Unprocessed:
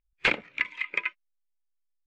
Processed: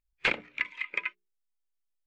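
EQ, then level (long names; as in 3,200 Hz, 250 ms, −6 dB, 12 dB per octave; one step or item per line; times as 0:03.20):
mains-hum notches 60/120/180/240/300/360/420 Hz
−3.0 dB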